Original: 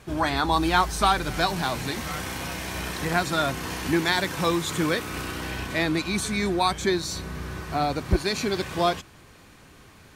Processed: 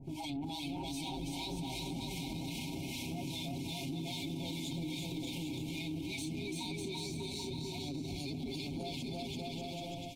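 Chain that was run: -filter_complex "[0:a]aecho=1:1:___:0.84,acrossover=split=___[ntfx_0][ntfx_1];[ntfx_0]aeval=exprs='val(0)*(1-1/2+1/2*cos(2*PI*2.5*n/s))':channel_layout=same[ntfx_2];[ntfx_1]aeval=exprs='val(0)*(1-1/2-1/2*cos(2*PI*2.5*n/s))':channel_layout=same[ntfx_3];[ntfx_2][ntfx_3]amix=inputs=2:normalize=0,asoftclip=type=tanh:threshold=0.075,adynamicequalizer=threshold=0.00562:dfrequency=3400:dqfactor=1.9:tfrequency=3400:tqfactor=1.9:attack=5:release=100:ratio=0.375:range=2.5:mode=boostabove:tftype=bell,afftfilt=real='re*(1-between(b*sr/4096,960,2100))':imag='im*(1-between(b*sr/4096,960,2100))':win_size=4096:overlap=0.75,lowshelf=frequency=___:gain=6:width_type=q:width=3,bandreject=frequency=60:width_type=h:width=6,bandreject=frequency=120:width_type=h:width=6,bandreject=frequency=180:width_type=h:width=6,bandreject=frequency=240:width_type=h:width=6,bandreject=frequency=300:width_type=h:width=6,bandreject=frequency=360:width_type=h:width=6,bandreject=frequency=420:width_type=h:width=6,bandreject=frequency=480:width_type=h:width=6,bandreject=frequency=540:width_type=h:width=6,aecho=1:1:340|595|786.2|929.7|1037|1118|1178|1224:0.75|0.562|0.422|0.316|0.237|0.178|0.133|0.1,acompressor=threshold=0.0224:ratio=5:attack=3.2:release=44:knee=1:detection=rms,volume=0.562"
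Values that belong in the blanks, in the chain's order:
7.4, 940, 380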